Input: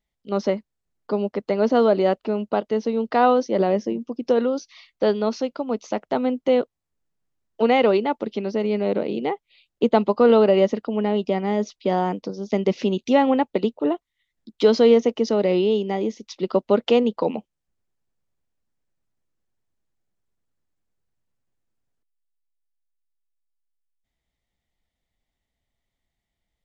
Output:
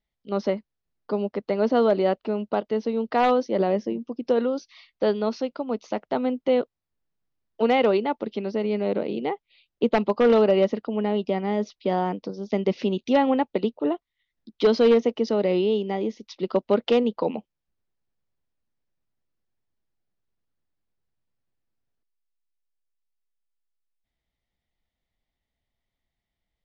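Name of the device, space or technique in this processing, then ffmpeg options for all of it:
synthesiser wavefolder: -af "aeval=exprs='0.398*(abs(mod(val(0)/0.398+3,4)-2)-1)':c=same,lowpass=f=5500:w=0.5412,lowpass=f=5500:w=1.3066,volume=0.75"

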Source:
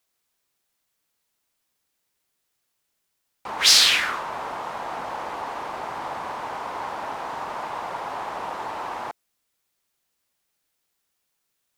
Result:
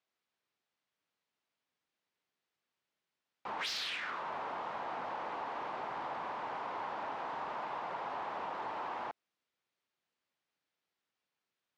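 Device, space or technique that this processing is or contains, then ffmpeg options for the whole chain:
AM radio: -af "highpass=120,lowpass=3700,acompressor=threshold=0.0447:ratio=10,asoftclip=type=tanh:threshold=0.0708,volume=0.473"

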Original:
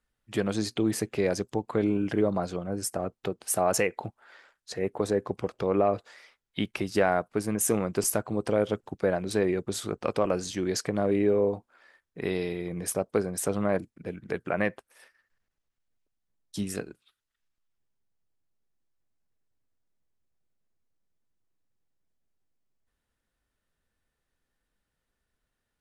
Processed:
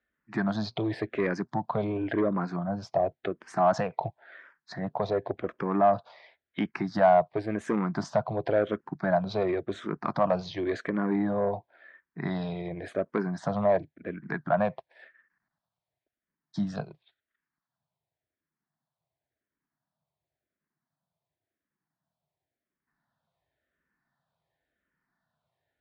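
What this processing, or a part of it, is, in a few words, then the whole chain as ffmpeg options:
barber-pole phaser into a guitar amplifier: -filter_complex "[0:a]asplit=2[s0][s1];[s1]afreqshift=-0.93[s2];[s0][s2]amix=inputs=2:normalize=1,asoftclip=type=tanh:threshold=0.0944,highpass=100,equalizer=f=150:t=q:w=4:g=8,equalizer=f=460:t=q:w=4:g=-5,equalizer=f=670:t=q:w=4:g=9,equalizer=f=970:t=q:w=4:g=5,equalizer=f=1700:t=q:w=4:g=5,equalizer=f=2800:t=q:w=4:g=-7,lowpass=f=4100:w=0.5412,lowpass=f=4100:w=1.3066,volume=1.41"

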